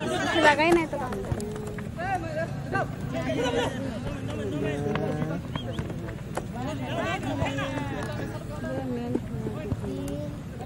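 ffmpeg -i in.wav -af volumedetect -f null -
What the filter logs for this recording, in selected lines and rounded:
mean_volume: -28.6 dB
max_volume: -6.0 dB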